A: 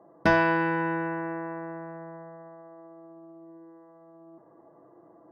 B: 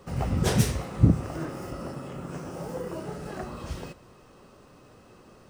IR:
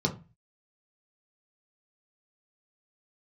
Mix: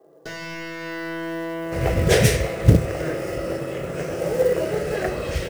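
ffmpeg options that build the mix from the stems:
-filter_complex "[0:a]highpass=120,aemphasis=mode=production:type=bsi,aeval=exprs='(tanh(50.1*val(0)+0.3)-tanh(0.3))/50.1':channel_layout=same,volume=-3dB,asplit=2[link_01][link_02];[link_02]volume=-4.5dB[link_03];[1:a]adelay=1650,volume=-6dB[link_04];[2:a]atrim=start_sample=2205[link_05];[link_03][link_05]afir=irnorm=-1:irlink=0[link_06];[link_01][link_04][link_06]amix=inputs=3:normalize=0,equalizer=frequency=250:width_type=o:width=1:gain=-9,equalizer=frequency=500:width_type=o:width=1:gain=12,equalizer=frequency=1000:width_type=o:width=1:gain=-11,equalizer=frequency=2000:width_type=o:width=1:gain=10,dynaudnorm=framelen=360:gausssize=7:maxgain=15.5dB,acrusher=bits=6:mode=log:mix=0:aa=0.000001"

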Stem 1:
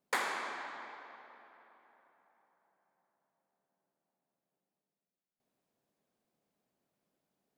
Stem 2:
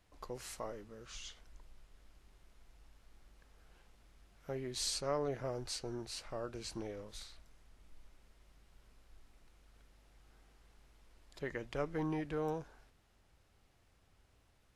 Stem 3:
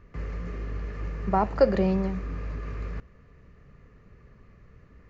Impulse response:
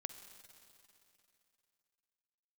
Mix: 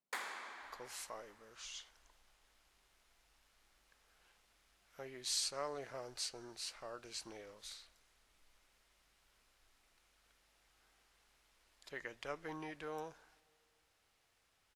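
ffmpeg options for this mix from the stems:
-filter_complex "[0:a]volume=-14.5dB,asplit=2[link_01][link_02];[link_02]volume=-3.5dB[link_03];[1:a]lowshelf=frequency=310:gain=-11,adelay=500,volume=-4dB,asplit=2[link_04][link_05];[link_05]volume=-13.5dB[link_06];[3:a]atrim=start_sample=2205[link_07];[link_03][link_06]amix=inputs=2:normalize=0[link_08];[link_08][link_07]afir=irnorm=-1:irlink=0[link_09];[link_01][link_04][link_09]amix=inputs=3:normalize=0,tiltshelf=frequency=880:gain=-3.5"

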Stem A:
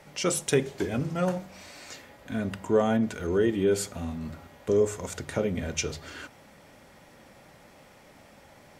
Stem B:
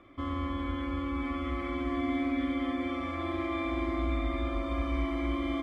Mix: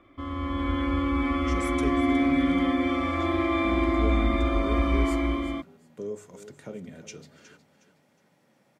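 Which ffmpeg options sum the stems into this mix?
ffmpeg -i stem1.wav -i stem2.wav -filter_complex "[0:a]highpass=frequency=140:width=0.5412,highpass=frequency=140:width=1.3066,lowshelf=frequency=210:gain=9.5,adelay=1300,volume=-14dB,asplit=2[link_01][link_02];[link_02]volume=-13.5dB[link_03];[1:a]dynaudnorm=framelen=150:gausssize=7:maxgain=8.5dB,volume=-1dB[link_04];[link_03]aecho=0:1:364|728|1092|1456:1|0.31|0.0961|0.0298[link_05];[link_01][link_04][link_05]amix=inputs=3:normalize=0" out.wav

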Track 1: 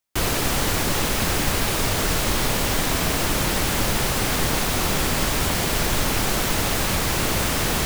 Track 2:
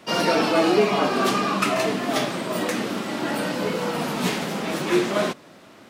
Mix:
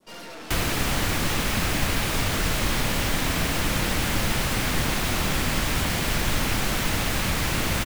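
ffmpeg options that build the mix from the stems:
ffmpeg -i stem1.wav -i stem2.wav -filter_complex "[0:a]equalizer=frequency=400:width_type=o:width=0.36:gain=-3.5,acrossover=split=370[link_01][link_02];[link_02]acompressor=threshold=-26dB:ratio=6[link_03];[link_01][link_03]amix=inputs=2:normalize=0,adelay=350,volume=-1dB[link_04];[1:a]highshelf=frequency=8100:gain=6.5,aeval=exprs='(tanh(31.6*val(0)+0.7)-tanh(0.7))/31.6':channel_layout=same,volume=-9.5dB[link_05];[link_04][link_05]amix=inputs=2:normalize=0,adynamicequalizer=threshold=0.00562:dfrequency=2200:dqfactor=0.72:tfrequency=2200:tqfactor=0.72:attack=5:release=100:ratio=0.375:range=2.5:mode=boostabove:tftype=bell" out.wav

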